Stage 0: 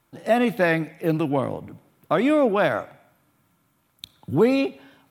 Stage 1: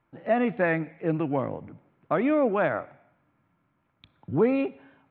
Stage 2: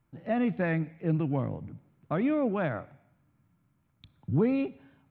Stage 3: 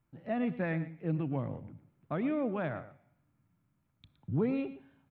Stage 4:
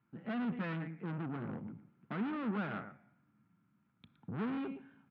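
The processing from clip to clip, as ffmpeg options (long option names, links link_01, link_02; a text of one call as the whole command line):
ffmpeg -i in.wav -af "lowpass=frequency=2500:width=0.5412,lowpass=frequency=2500:width=1.3066,volume=-4dB" out.wav
ffmpeg -i in.wav -af "bass=frequency=250:gain=13,treble=frequency=4000:gain=14,volume=-7.5dB" out.wav
ffmpeg -i in.wav -af "aecho=1:1:116:0.188,volume=-5dB" out.wav
ffmpeg -i in.wav -af "aeval=exprs='(tanh(112*val(0)+0.6)-tanh(0.6))/112':channel_layout=same,highpass=140,equalizer=frequency=210:width_type=q:width=4:gain=9,equalizer=frequency=590:width_type=q:width=4:gain=-7,equalizer=frequency=1400:width_type=q:width=4:gain=7,lowpass=frequency=3300:width=0.5412,lowpass=frequency=3300:width=1.3066,volume=4dB" out.wav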